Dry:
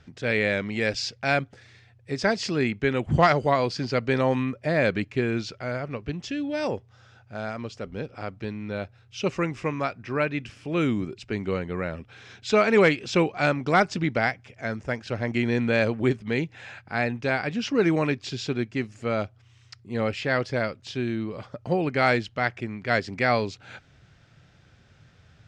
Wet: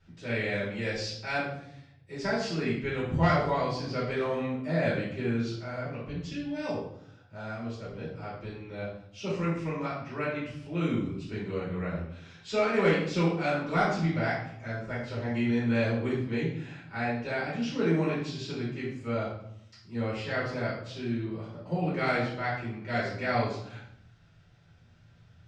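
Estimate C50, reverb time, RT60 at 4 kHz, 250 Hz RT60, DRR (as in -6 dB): 2.5 dB, 0.75 s, 0.55 s, 1.0 s, -9.5 dB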